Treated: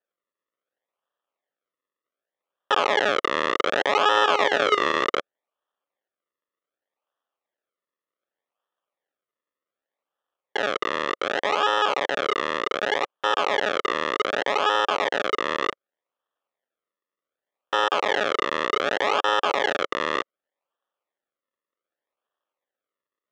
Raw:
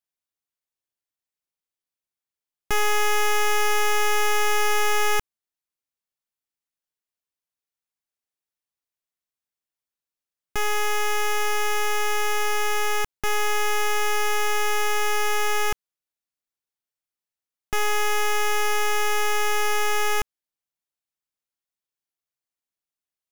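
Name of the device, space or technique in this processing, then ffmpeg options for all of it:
circuit-bent sampling toy: -filter_complex "[0:a]asettb=1/sr,asplit=3[a][b][c];[a]atrim=end=4.154[d];[b]atrim=start=4.15:end=5.03,asetpts=PTS-STARTPTS,afade=t=in:d=0.004:c=qsin,afade=t=out:st=0.876:d=0.004:c=qsin,lowshelf=f=300:g=9.5[e];[c]atrim=start=5.026[f];[d][e]acrossfade=d=0.004:c1=hsin:c2=qsin[g];[g][f]acrossfade=d=0.004:c1=qsin:c2=hsin,acrusher=samples=39:mix=1:aa=0.000001:lfo=1:lforange=39:lforate=0.66,highpass=530,equalizer=f=550:t=q:w=4:g=6,equalizer=f=1.2k:t=q:w=4:g=7,equalizer=f=1.8k:t=q:w=4:g=8,equalizer=f=3.3k:t=q:w=4:g=7,equalizer=f=4.7k:t=q:w=4:g=-8,lowpass=f=5.4k:w=0.5412,lowpass=f=5.4k:w=1.3066,volume=2.5dB"

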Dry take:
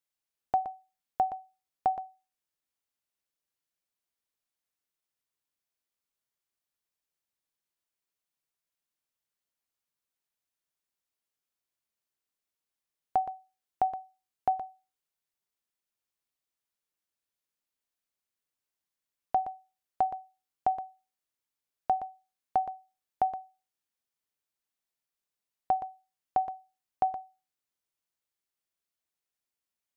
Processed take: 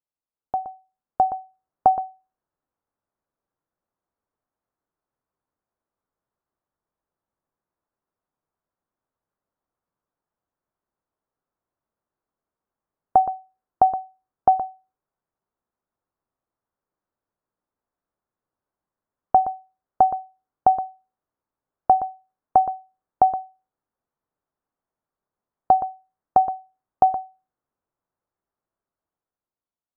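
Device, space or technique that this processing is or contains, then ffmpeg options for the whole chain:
action camera in a waterproof case: -af "lowpass=f=1.3k:w=0.5412,lowpass=f=1.3k:w=1.3066,dynaudnorm=f=320:g=7:m=11.5dB" -ar 44100 -c:a aac -b:a 128k

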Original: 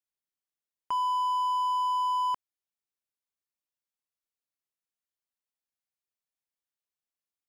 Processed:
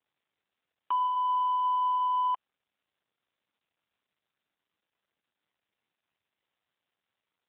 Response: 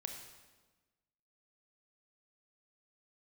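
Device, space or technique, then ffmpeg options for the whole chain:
telephone: -af "highpass=300,lowpass=3.2k,volume=2.5dB" -ar 8000 -c:a libopencore_amrnb -b:a 7950

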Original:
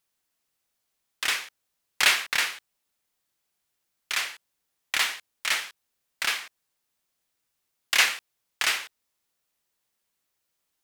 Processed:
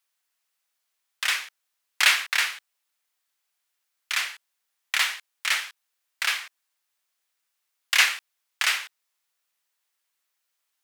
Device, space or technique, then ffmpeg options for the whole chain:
filter by subtraction: -filter_complex "[0:a]asplit=2[a][b];[b]lowpass=1.5k,volume=-1[c];[a][c]amix=inputs=2:normalize=0"

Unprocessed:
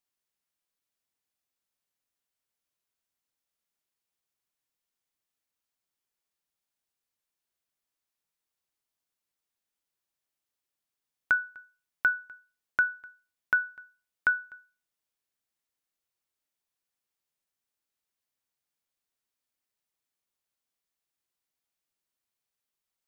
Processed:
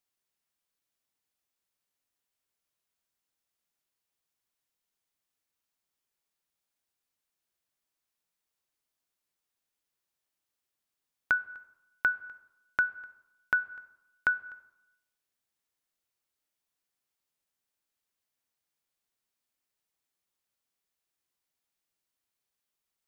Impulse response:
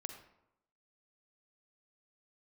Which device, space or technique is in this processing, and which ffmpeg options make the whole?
compressed reverb return: -filter_complex "[0:a]asplit=2[a][b];[1:a]atrim=start_sample=2205[c];[b][c]afir=irnorm=-1:irlink=0,acompressor=threshold=-35dB:ratio=5,volume=1.5dB[d];[a][d]amix=inputs=2:normalize=0,volume=-4dB"

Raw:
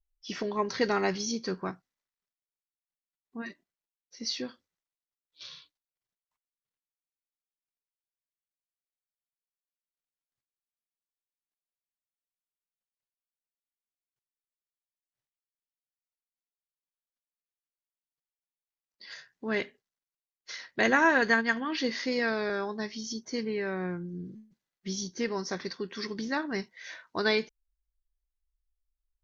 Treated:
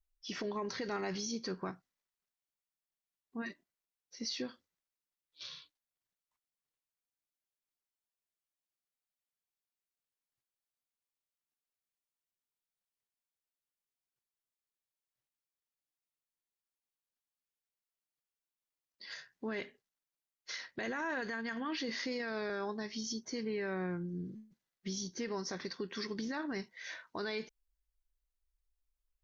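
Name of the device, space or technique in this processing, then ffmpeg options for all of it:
stacked limiters: -af "alimiter=limit=-17dB:level=0:latency=1:release=134,alimiter=limit=-23dB:level=0:latency=1:release=30,alimiter=level_in=4dB:limit=-24dB:level=0:latency=1:release=118,volume=-4dB,volume=-1.5dB"

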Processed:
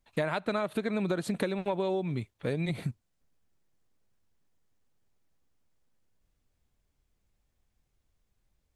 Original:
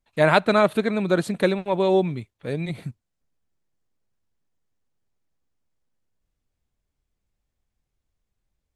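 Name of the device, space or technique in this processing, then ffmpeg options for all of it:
serial compression, peaks first: -af "acompressor=threshold=-24dB:ratio=6,acompressor=threshold=-32dB:ratio=2.5,volume=3dB"

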